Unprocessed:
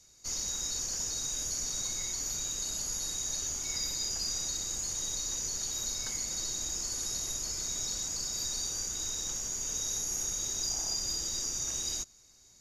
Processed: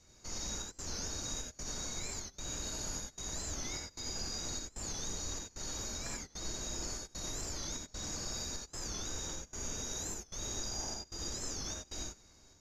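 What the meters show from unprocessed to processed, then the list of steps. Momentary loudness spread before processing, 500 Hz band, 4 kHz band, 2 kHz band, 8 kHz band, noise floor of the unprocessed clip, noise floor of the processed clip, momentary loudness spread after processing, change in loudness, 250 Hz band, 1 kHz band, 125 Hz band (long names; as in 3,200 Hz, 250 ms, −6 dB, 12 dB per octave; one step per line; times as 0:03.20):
2 LU, +2.5 dB, −6.5 dB, −0.5 dB, −9.0 dB, −60 dBFS, −63 dBFS, 3 LU, −7.5 dB, +3.5 dB, +1.5 dB, +2.5 dB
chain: low-pass filter 1,700 Hz 6 dB per octave
brickwall limiter −37 dBFS, peak gain reduction 7.5 dB
gate pattern "xxxxxxx.." 170 BPM −24 dB
reverb whose tail is shaped and stops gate 110 ms rising, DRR 0.5 dB
wow of a warped record 45 rpm, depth 160 cents
level +4 dB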